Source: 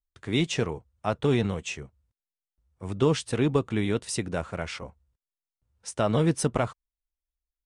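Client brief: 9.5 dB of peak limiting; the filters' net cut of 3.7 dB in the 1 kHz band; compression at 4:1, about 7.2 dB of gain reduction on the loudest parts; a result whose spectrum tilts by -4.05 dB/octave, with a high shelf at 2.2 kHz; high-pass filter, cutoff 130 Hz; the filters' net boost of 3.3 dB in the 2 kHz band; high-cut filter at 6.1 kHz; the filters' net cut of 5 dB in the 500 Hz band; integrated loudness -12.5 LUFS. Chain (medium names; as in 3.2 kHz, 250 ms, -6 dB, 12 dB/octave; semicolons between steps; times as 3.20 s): high-pass 130 Hz; low-pass 6.1 kHz; peaking EQ 500 Hz -5.5 dB; peaking EQ 1 kHz -5.5 dB; peaking EQ 2 kHz +3.5 dB; treble shelf 2.2 kHz +4 dB; compression 4:1, threshold -29 dBFS; trim +25 dB; peak limiter 0 dBFS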